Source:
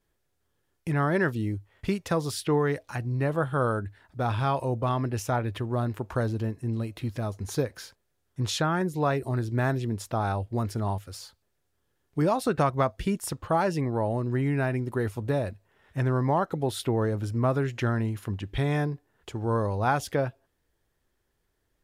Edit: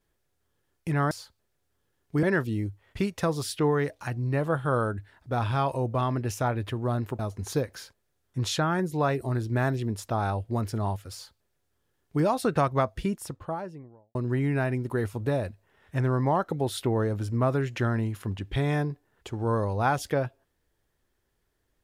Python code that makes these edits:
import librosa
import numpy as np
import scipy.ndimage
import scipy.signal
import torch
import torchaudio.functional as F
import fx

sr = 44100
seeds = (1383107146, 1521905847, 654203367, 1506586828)

y = fx.studio_fade_out(x, sr, start_s=12.79, length_s=1.38)
y = fx.edit(y, sr, fx.cut(start_s=6.07, length_s=1.14),
    fx.duplicate(start_s=11.14, length_s=1.12, to_s=1.11), tone=tone)